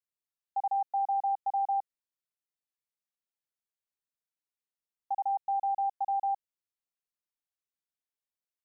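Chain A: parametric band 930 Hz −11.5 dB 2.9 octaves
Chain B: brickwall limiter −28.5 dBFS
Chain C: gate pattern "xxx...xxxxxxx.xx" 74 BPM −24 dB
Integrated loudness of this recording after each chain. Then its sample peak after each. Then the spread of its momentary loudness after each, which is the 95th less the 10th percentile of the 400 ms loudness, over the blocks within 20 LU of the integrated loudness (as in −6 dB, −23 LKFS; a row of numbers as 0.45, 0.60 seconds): −43.0, −35.0, −33.0 LKFS; −36.0, −28.5, −25.0 dBFS; 6, 6, 8 LU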